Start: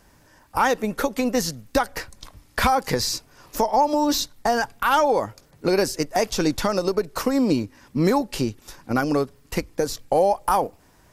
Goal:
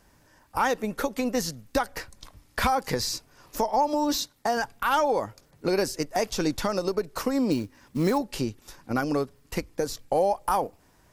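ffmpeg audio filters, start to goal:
-filter_complex "[0:a]asettb=1/sr,asplit=3[a][b][c];[a]atrim=end=4.164[d];[b]atrim=start=4.16:end=4.57,asetpts=PTS-STARTPTS,afade=t=in:d=0.004:c=qsin,afade=t=out:st=0.406:d=0.004:c=qsin,highpass=f=130:p=1[e];[c]atrim=start=4.566[f];[d][e]acrossfade=d=0.004:c1=hsin:c2=qsin[g];[g][f]acrossfade=d=0.004:c1=qsin:c2=hsin,asettb=1/sr,asplit=3[h][i][j];[h]atrim=end=7.514[k];[i]atrim=start=7.51:end=8.18,asetpts=PTS-STARTPTS,afade=t=in:d=0.004:c=qsin,afade=t=out:st=0.666:d=0.004:c=qsin,acrusher=bits=6:mode=log:mix=0:aa=0.000001[l];[j]atrim=start=8.176[m];[k][l]acrossfade=d=0.004:c1=hsin:c2=qsin[n];[n][m]acrossfade=d=0.004:c1=qsin:c2=hsin,volume=-4.5dB"

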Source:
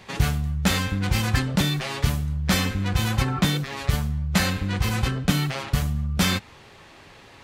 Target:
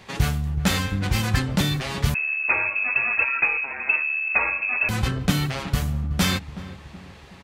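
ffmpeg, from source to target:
-filter_complex "[0:a]asplit=2[a][b];[b]adelay=373,lowpass=f=910:p=1,volume=-13dB,asplit=2[c][d];[d]adelay=373,lowpass=f=910:p=1,volume=0.5,asplit=2[e][f];[f]adelay=373,lowpass=f=910:p=1,volume=0.5,asplit=2[g][h];[h]adelay=373,lowpass=f=910:p=1,volume=0.5,asplit=2[i][j];[j]adelay=373,lowpass=f=910:p=1,volume=0.5[k];[a][c][e][g][i][k]amix=inputs=6:normalize=0,asettb=1/sr,asplit=3[l][m][n];[l]atrim=end=2.144[o];[m]atrim=start=2.14:end=4.89,asetpts=PTS-STARTPTS,afade=t=in:d=0.004:c=qsin,afade=t=out:st=2.746:d=0.004:c=qsin,lowpass=f=2.3k:t=q:w=0.5098,lowpass=f=2.3k:t=q:w=0.6013,lowpass=f=2.3k:t=q:w=0.9,lowpass=f=2.3k:t=q:w=2.563,afreqshift=-2700[p];[n]atrim=start=4.886[q];[o][p]acrossfade=d=0.004:c1=hsin:c2=qsin[r];[r][q]acrossfade=d=0.004:c1=qsin:c2=hsin"

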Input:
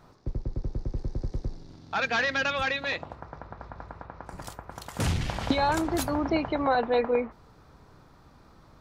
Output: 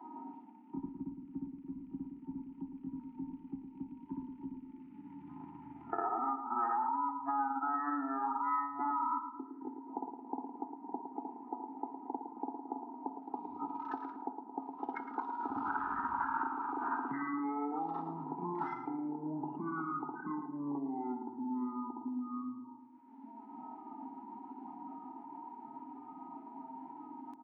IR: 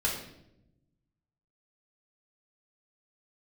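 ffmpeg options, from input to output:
-filter_complex "[0:a]asplit=3[a][b][c];[a]bandpass=f=530:t=q:w=8,volume=0dB[d];[b]bandpass=f=1.84k:t=q:w=8,volume=-6dB[e];[c]bandpass=f=2.48k:t=q:w=8,volume=-9dB[f];[d][e][f]amix=inputs=3:normalize=0,equalizer=f=1.5k:t=o:w=2.8:g=15,acrossover=split=280|3000[g][h][i];[g]acompressor=threshold=-49dB:ratio=2.5[j];[j][h][i]amix=inputs=3:normalize=0,alimiter=level_in=10.5dB:limit=-24dB:level=0:latency=1:release=384,volume=-10.5dB,acompressor=threshold=-52dB:ratio=4,asetrate=70004,aresample=44100,atempo=0.629961,afftdn=nr=22:nf=-63,crystalizer=i=6.5:c=0,asetrate=14156,aresample=44100,asplit=2[k][l];[l]adelay=111,lowpass=f=1.4k:p=1,volume=-7dB,asplit=2[m][n];[n]adelay=111,lowpass=f=1.4k:p=1,volume=0.54,asplit=2[o][p];[p]adelay=111,lowpass=f=1.4k:p=1,volume=0.54,asplit=2[q][r];[r]adelay=111,lowpass=f=1.4k:p=1,volume=0.54,asplit=2[s][t];[t]adelay=111,lowpass=f=1.4k:p=1,volume=0.54,asplit=2[u][v];[v]adelay=111,lowpass=f=1.4k:p=1,volume=0.54,asplit=2[w][x];[x]adelay=111,lowpass=f=1.4k:p=1,volume=0.54[y];[m][o][q][s][u][w][y]amix=inputs=7:normalize=0[z];[k][z]amix=inputs=2:normalize=0,volume=9.5dB"

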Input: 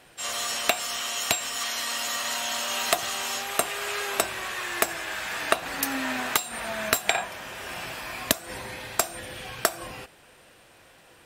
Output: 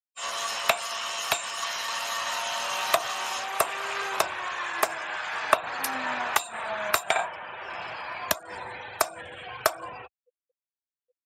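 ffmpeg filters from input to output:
-af "afftfilt=real='re*gte(hypot(re,im),0.0126)':imag='im*gte(hypot(re,im),0.0126)':win_size=1024:overlap=0.75,equalizer=f=125:t=o:w=1:g=-3,equalizer=f=250:t=o:w=1:g=-8,equalizer=f=1k:t=o:w=1:g=7,asetrate=42845,aresample=44100,atempo=1.0293,aeval=exprs='0.944*(cos(1*acos(clip(val(0)/0.944,-1,1)))-cos(1*PI/2))+0.0266*(cos(7*acos(clip(val(0)/0.944,-1,1)))-cos(7*PI/2))':c=same" -ar 32000 -c:a libspeex -b:a 36k

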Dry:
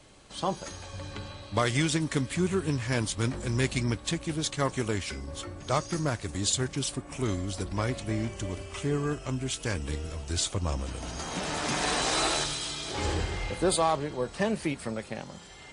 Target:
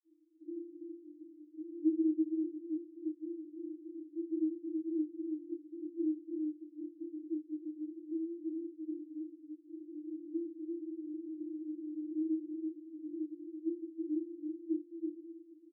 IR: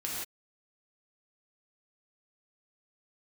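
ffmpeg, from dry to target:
-filter_complex "[0:a]agate=range=-14dB:threshold=-40dB:ratio=16:detection=peak,acompressor=threshold=-40dB:ratio=2,aeval=exprs='0.0708*sin(PI/2*2*val(0)/0.0708)':c=same,aphaser=in_gain=1:out_gain=1:delay=4.4:decay=0.36:speed=0.19:type=sinusoidal,asuperpass=centerf=320:order=20:qfactor=7.2,asplit=2[a][b];[b]adelay=32,volume=-7.5dB[c];[a][c]amix=inputs=2:normalize=0,asplit=2[d][e];[e]aecho=0:1:330:0.596[f];[d][f]amix=inputs=2:normalize=0,volume=2dB"

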